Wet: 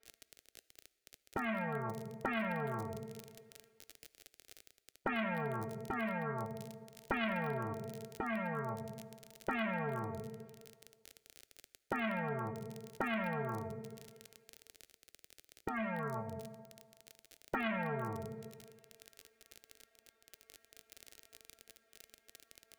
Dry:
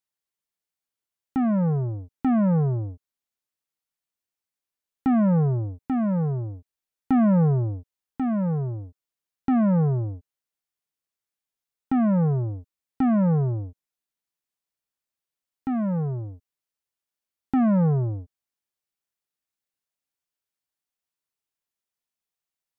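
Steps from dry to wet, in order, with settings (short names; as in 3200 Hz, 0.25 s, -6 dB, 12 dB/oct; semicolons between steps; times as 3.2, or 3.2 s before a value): HPF 48 Hz; metallic resonator 220 Hz, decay 0.29 s, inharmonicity 0.002; gate -50 dBFS, range -29 dB; bell 1400 Hz +7.5 dB 1.9 oct; reverse; upward compressor, threshold -47 dBFS; reverse; low-pass opened by the level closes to 1200 Hz, open at -25 dBFS; crackle 28/s -55 dBFS; soft clip -23 dBFS, distortion -15 dB; envelope phaser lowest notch 170 Hz, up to 1200 Hz, full sweep at -33 dBFS; on a send at -16.5 dB: reverb RT60 1.8 s, pre-delay 4 ms; on the sum: spectral compressor 4:1; gain +1 dB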